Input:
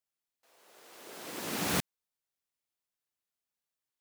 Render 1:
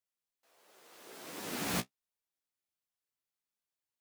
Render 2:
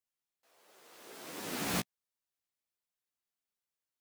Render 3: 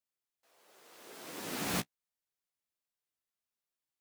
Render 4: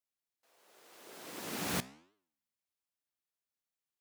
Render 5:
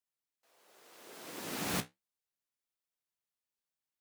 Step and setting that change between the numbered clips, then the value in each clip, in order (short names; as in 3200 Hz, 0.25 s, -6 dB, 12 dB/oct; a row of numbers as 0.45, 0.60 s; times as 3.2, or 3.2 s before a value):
flange, regen: +31, +5, -17, +88, -56%